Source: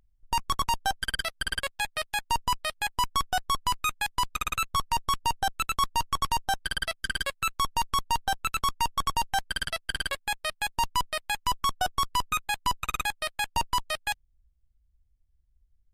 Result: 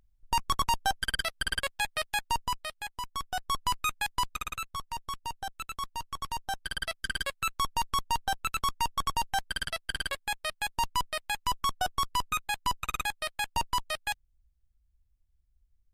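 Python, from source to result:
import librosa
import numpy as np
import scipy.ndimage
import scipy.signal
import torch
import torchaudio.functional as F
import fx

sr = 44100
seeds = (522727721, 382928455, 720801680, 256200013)

y = fx.gain(x, sr, db=fx.line((2.15, -0.5), (3.03, -11.0), (3.61, -2.0), (4.19, -2.0), (4.74, -10.0), (6.1, -10.0), (6.95, -2.5)))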